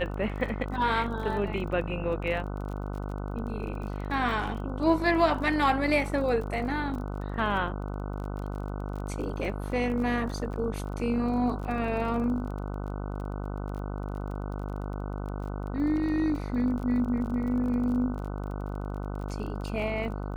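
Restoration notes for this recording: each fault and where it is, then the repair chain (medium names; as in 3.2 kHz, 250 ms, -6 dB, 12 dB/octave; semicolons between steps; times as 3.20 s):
buzz 50 Hz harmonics 30 -34 dBFS
crackle 31 per s -37 dBFS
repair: de-click; de-hum 50 Hz, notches 30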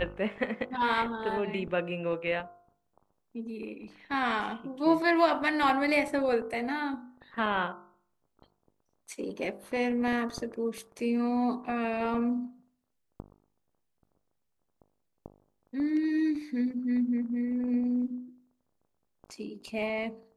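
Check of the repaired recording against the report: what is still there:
nothing left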